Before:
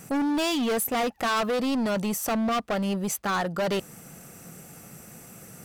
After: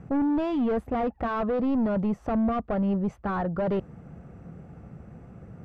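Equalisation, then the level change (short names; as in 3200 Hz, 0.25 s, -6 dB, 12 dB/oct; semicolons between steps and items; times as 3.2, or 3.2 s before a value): Bessel low-pass 940 Hz, order 2; bell 64 Hz +12 dB 1.2 oct; low shelf 120 Hz +5 dB; 0.0 dB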